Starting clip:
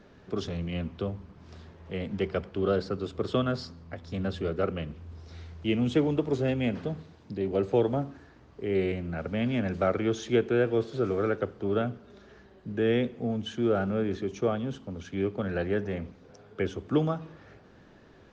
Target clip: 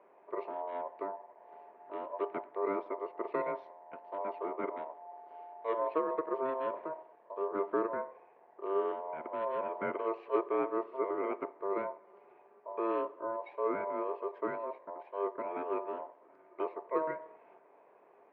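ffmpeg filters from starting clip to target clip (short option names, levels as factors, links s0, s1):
-af "aeval=exprs='val(0)*sin(2*PI*790*n/s)':c=same,highpass=330,equalizer=f=410:t=q:w=4:g=7,equalizer=f=690:t=q:w=4:g=3,equalizer=f=1300:t=q:w=4:g=-10,lowpass=f=2000:w=0.5412,lowpass=f=2000:w=1.3066,volume=0.631"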